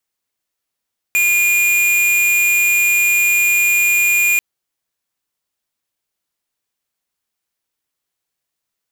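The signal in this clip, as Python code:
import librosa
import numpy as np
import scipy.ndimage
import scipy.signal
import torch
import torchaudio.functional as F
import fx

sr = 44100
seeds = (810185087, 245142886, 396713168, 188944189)

y = fx.tone(sr, length_s=3.24, wave='square', hz=2430.0, level_db=-14.0)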